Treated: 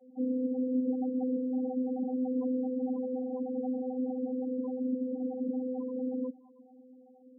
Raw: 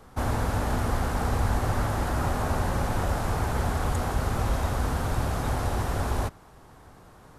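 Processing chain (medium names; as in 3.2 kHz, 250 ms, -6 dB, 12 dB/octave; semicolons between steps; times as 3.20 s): vocoder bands 16, saw 255 Hz; two-slope reverb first 0.25 s, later 3.3 s, from -18 dB, DRR 19.5 dB; loudest bins only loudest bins 4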